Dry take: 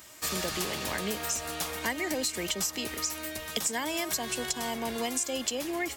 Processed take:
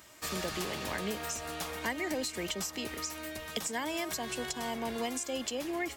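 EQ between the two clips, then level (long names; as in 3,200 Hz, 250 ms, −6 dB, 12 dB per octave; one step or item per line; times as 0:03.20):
high-shelf EQ 4,200 Hz −6.5 dB
−2.0 dB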